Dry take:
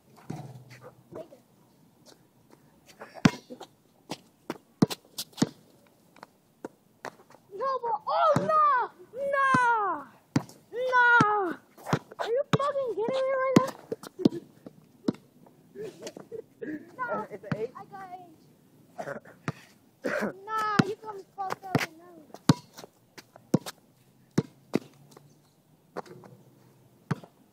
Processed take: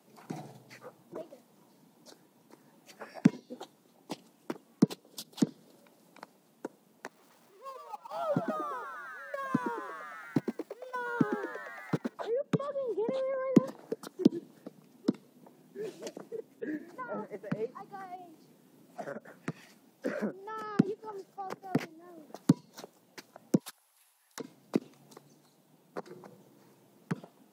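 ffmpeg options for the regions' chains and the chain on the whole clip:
-filter_complex "[0:a]asettb=1/sr,asplit=3[s0][s1][s2];[s0]atrim=end=7.074[s3];[s1]atrim=start=7.07:end=12.14,asetpts=PTS-STARTPTS,afade=t=in:d=0.004:c=qsin,afade=t=out:st=5.066:d=0.004:c=qsin,aeval=exprs='val(0)+0.5*0.0282*sgn(val(0))':c=same,agate=range=0.0501:threshold=0.0631:ratio=16:release=100:detection=peak,asplit=8[s4][s5][s6][s7][s8][s9][s10][s11];[s5]adelay=114,afreqshift=91,volume=0.398[s12];[s6]adelay=228,afreqshift=182,volume=0.232[s13];[s7]adelay=342,afreqshift=273,volume=0.133[s14];[s8]adelay=456,afreqshift=364,volume=0.0776[s15];[s9]adelay=570,afreqshift=455,volume=0.0452[s16];[s10]adelay=684,afreqshift=546,volume=0.026[s17];[s11]adelay=798,afreqshift=637,volume=0.0151[s18];[s4][s12][s13][s14][s15][s16][s17][s18]amix=inputs=8:normalize=0,atrim=end_sample=223587[s19];[s2]atrim=start=12.136[s20];[s3][s19]acrossfade=d=0.004:c1=hsin:c2=qsin[s21];[s21][s20]acrossfade=d=0.004:c1=qsin:c2=hsin,asettb=1/sr,asplit=3[s22][s23][s24];[s22]atrim=end=23.604[s25];[s23]atrim=start=23.6:end=24.4,asetpts=PTS-STARTPTS,afade=t=in:d=0.004:c=qsin,afade=t=out:st=0.796:d=0.004:c=qsin,highpass=f=870:w=0.5412,highpass=f=870:w=1.3066,equalizer=f=11000:w=4.2:g=12.5,aeval=exprs='clip(val(0),-1,0.0237)':c=same[s26];[s24]atrim=start=24.396[s27];[s25][s26]acrossfade=d=0.004:c1=hsin:c2=qsin[s28];[s28][s27]acrossfade=d=0.004:c1=qsin:c2=hsin,highpass=f=170:w=0.5412,highpass=f=170:w=1.3066,acrossover=split=470[s29][s30];[s30]acompressor=threshold=0.00891:ratio=5[s31];[s29][s31]amix=inputs=2:normalize=0"

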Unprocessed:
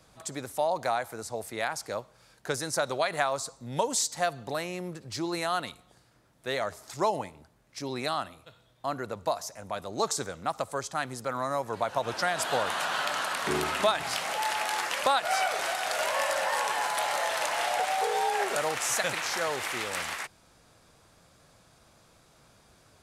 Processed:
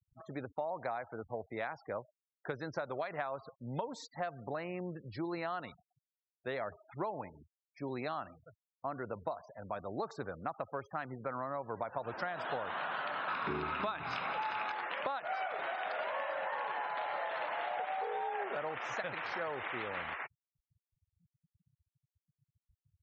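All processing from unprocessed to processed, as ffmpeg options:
-filter_complex "[0:a]asettb=1/sr,asplit=3[s0][s1][s2];[s0]atrim=end=13.284[s3];[s1]atrim=start=13.28:end=14.72,asetpts=PTS-STARTPTS,afade=t=in:d=0.004:c=qsin,afade=t=out:st=1.436:d=0.004:c=qsin,aecho=1:1:0.8:0.41,atrim=end_sample=63504,acontrast=34[s4];[s2]atrim=start=14.716[s5];[s3][s4]acrossfade=d=0.004:c1=hsin:c2=qsin[s6];[s6][s5]acrossfade=d=0.004:c1=qsin:c2=hsin,lowpass=2300,afftfilt=real='re*gte(hypot(re,im),0.00708)':imag='im*gte(hypot(re,im),0.00708)':win_size=1024:overlap=0.75,acompressor=threshold=0.0282:ratio=6,volume=0.708"

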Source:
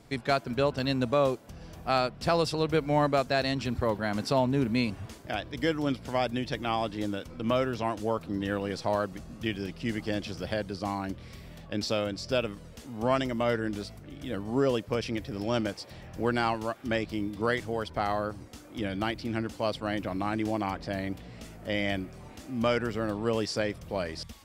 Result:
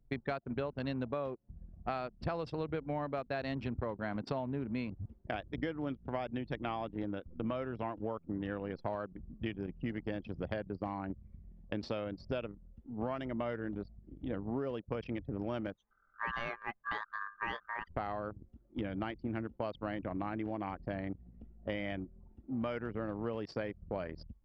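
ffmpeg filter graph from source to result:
-filter_complex "[0:a]asettb=1/sr,asplit=3[s0][s1][s2];[s0]atrim=end=15.754[s3];[s1]atrim=start=15.75:end=17.88,asetpts=PTS-STARTPTS,afade=t=in:d=0.004:c=qsin,afade=t=out:st=2.126:d=0.004:c=qsin,equalizer=f=850:t=o:w=3:g=-4.5,aecho=1:1:4.9:0.4,atrim=end_sample=93933,aeval=exprs='val(0)*sin(2*PI*1400*n/s)':c=same[s4];[s2]atrim=start=17.876[s5];[s3][s4]acrossfade=d=0.004:c1=hsin:c2=qsin[s6];[s6][s5]acrossfade=d=0.004:c1=qsin:c2=hsin,anlmdn=6.31,lowpass=2600,acompressor=threshold=0.02:ratio=12,volume=1.12"

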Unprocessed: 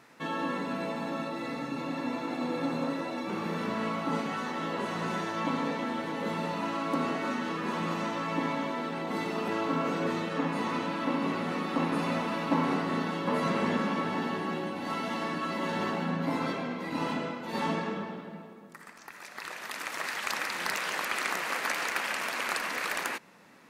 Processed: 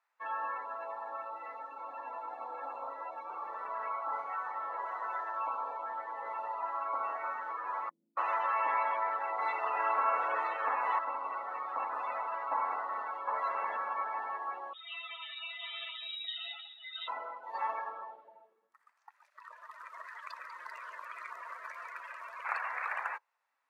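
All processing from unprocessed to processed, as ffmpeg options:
-filter_complex "[0:a]asettb=1/sr,asplit=3[s0][s1][s2];[s0]atrim=end=5.384[s3];[s1]atrim=start=5.38:end=5.86,asetpts=PTS-STARTPTS,afade=t=in:d=0.004:c=qsin,afade=t=out:st=0.476:d=0.004:c=qsin,highpass=f=240:w=0.5412,highpass=f=240:w=1.3066,equalizer=f=1900:t=o:w=0.2:g=-11.5[s4];[s2]atrim=start=5.856[s5];[s3][s4]acrossfade=d=0.004:c1=hsin:c2=qsin[s6];[s6][s5]acrossfade=d=0.004:c1=qsin:c2=hsin,asettb=1/sr,asplit=3[s7][s8][s9];[s7]atrim=end=7.894[s10];[s8]atrim=start=7.89:end=10.99,asetpts=PTS-STARTPTS,afade=t=in:d=0.004:c=qsin,afade=t=out:st=3.096:d=0.004:c=qsin,acontrast=26,acrossover=split=190[s11][s12];[s12]adelay=280[s13];[s11][s13]amix=inputs=2:normalize=0,atrim=end_sample=136710[s14];[s9]atrim=start=10.986[s15];[s10][s14]acrossfade=d=0.004:c1=hsin:c2=qsin[s16];[s16][s15]acrossfade=d=0.004:c1=qsin:c2=hsin,asettb=1/sr,asplit=3[s17][s18][s19];[s17]atrim=end=14.734[s20];[s18]atrim=start=14.73:end=17.08,asetpts=PTS-STARTPTS,afade=t=in:d=0.004:c=qsin,afade=t=out:st=2.346:d=0.004:c=qsin,aecho=1:1:6.6:0.79,atrim=end_sample=103635,lowpass=f=3400:t=q:w=0.5098,lowpass=f=3400:t=q:w=0.6013,lowpass=f=3400:t=q:w=0.9,lowpass=f=3400:t=q:w=2.563,afreqshift=-4000,aemphasis=mode=reproduction:type=75kf[s21];[s19]atrim=start=17.076[s22];[s20][s21]acrossfade=d=0.004:c1=hsin:c2=qsin[s23];[s23][s22]acrossfade=d=0.004:c1=qsin:c2=hsin,asettb=1/sr,asplit=3[s24][s25][s26];[s24]atrim=end=19.304[s27];[s25]atrim=start=19.3:end=22.45,asetpts=PTS-STARTPTS,afade=t=in:d=0.004:c=qsin,afade=t=out:st=3.146:d=0.004:c=qsin,adynamicequalizer=threshold=0.00562:dfrequency=930:dqfactor=1.2:tfrequency=930:tqfactor=1.2:attack=5:release=100:ratio=0.375:range=1.5:mode=boostabove:tftype=bell,acrossover=split=350|3000[s28][s29][s30];[s29]acompressor=threshold=0.0126:ratio=4:attack=3.2:release=140:knee=2.83:detection=peak[s31];[s28][s31][s30]amix=inputs=3:normalize=0,asuperstop=centerf=800:order=4:qfactor=5.1[s32];[s26]atrim=start=22.446[s33];[s27][s32]acrossfade=d=0.004:c1=hsin:c2=qsin[s34];[s34][s33]acrossfade=d=0.004:c1=qsin:c2=hsin,tiltshelf=f=1300:g=7.5,afftdn=nr=22:nf=-35,highpass=f=870:w=0.5412,highpass=f=870:w=1.3066"

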